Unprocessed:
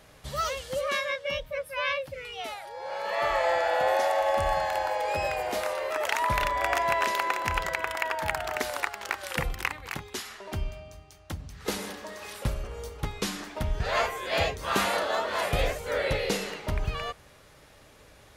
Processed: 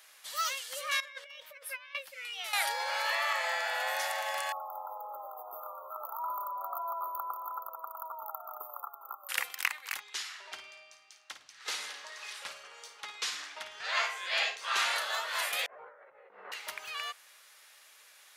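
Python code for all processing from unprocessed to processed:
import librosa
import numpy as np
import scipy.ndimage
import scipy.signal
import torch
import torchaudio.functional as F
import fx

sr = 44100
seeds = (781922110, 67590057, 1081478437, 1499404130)

y = fx.chain(x, sr, fx.high_shelf(hz=5000.0, db=-6.5),
    fx.over_compress(threshold_db=-38.0, ratio=-0.5), at=(1.0, 1.95))
y = fx.chain(y, sr, fx.highpass(hz=44.0, slope=12),
    fx.env_flatten(amount_pct=100), at=(2.53, 3.33))
y = fx.chain(y, sr, fx.brickwall_bandstop(low_hz=1400.0, high_hz=13000.0),
    fx.low_shelf(hz=440.0, db=-9.0), at=(4.52, 9.29))
y = fx.chain(y, sr, fx.lowpass(hz=6000.0, slope=12),
    fx.hum_notches(base_hz=50, count=7),
    fx.room_flutter(wall_m=9.3, rt60_s=0.32), at=(10.0, 14.96))
y = fx.chain(y, sr, fx.lowpass(hz=1200.0, slope=24),
    fx.over_compress(threshold_db=-39.0, ratio=-1.0), at=(15.66, 16.52))
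y = scipy.signal.sosfilt(scipy.signal.butter(2, 1400.0, 'highpass', fs=sr, output='sos'), y)
y = fx.high_shelf(y, sr, hz=7900.0, db=7.0)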